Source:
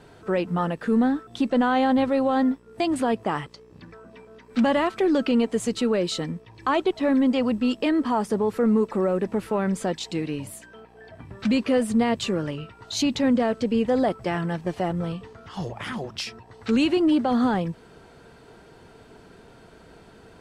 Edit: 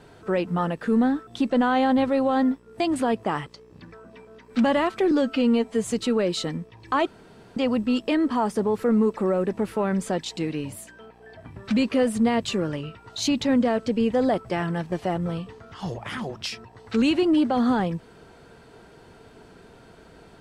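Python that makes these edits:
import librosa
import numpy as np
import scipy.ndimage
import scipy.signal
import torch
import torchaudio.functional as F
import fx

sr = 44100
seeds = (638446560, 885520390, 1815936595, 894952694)

y = fx.edit(x, sr, fx.stretch_span(start_s=5.11, length_s=0.51, factor=1.5),
    fx.room_tone_fill(start_s=6.81, length_s=0.5), tone=tone)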